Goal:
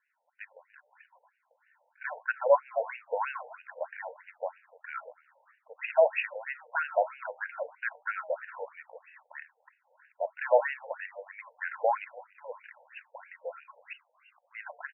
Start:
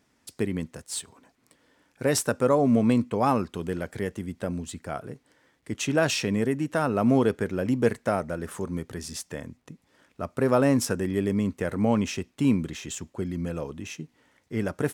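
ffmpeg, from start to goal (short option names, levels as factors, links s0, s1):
-filter_complex "[0:a]dynaudnorm=f=480:g=7:m=3.76,flanger=delay=5.3:depth=2.4:regen=-89:speed=0.98:shape=sinusoidal,asettb=1/sr,asplit=3[s0][s1][s2];[s0]atrim=end=4.024[s3];[s1]atrim=start=4.02:end=4.58,asetpts=PTS-STARTPTS,afade=t=in:d=0.004:c=qsin,afade=t=out:st=0.556:d=0.004:c=qsin,aeval=exprs='max(val(0),0)':c=same[s4];[s2]atrim=start=4.576[s5];[s3][s4]acrossfade=d=0.004:c1=hsin:c2=qsin[s6];[s6][s5]acrossfade=d=0.004:c1=qsin:c2=hsin,asuperstop=centerf=1200:order=8:qfactor=6.3,asplit=4[s7][s8][s9][s10];[s8]adelay=288,afreqshift=-80,volume=0.0708[s11];[s9]adelay=576,afreqshift=-160,volume=0.0327[s12];[s10]adelay=864,afreqshift=-240,volume=0.015[s13];[s7][s11][s12][s13]amix=inputs=4:normalize=0,asettb=1/sr,asplit=3[s14][s15][s16];[s14]atrim=end=13.934[s17];[s15]atrim=start=13.93:end=14.55,asetpts=PTS-STARTPTS,afade=t=in:d=0.004:c=qsin,afade=t=out:st=0.616:d=0.004:c=qsin,lowpass=f=2600:t=q:w=0.5098,lowpass=f=2600:t=q:w=0.6013,lowpass=f=2600:t=q:w=0.9,lowpass=f=2600:t=q:w=2.563,afreqshift=-3000[s18];[s16]atrim=start=14.546[s19];[s17][s18]acrossfade=d=0.004:c1=hsin:c2=qsin[s20];[s20][s19]acrossfade=d=0.004:c1=qsin:c2=hsin,afftfilt=real='re*between(b*sr/1024,650*pow(2100/650,0.5+0.5*sin(2*PI*3.1*pts/sr))/1.41,650*pow(2100/650,0.5+0.5*sin(2*PI*3.1*pts/sr))*1.41)':imag='im*between(b*sr/1024,650*pow(2100/650,0.5+0.5*sin(2*PI*3.1*pts/sr))/1.41,650*pow(2100/650,0.5+0.5*sin(2*PI*3.1*pts/sr))*1.41)':win_size=1024:overlap=0.75,volume=1.19"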